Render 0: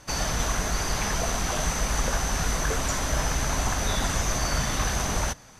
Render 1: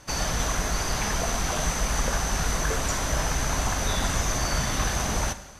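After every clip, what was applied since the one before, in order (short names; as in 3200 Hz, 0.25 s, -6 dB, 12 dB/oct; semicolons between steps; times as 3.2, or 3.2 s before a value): reverb RT60 1.1 s, pre-delay 32 ms, DRR 12 dB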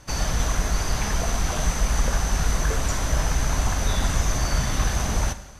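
low shelf 140 Hz +7.5 dB; gain -1 dB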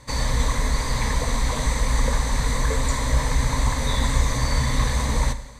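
ripple EQ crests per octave 1, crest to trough 12 dB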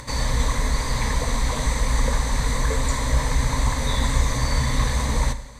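upward compressor, threshold -31 dBFS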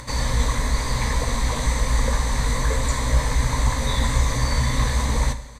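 doubler 17 ms -11 dB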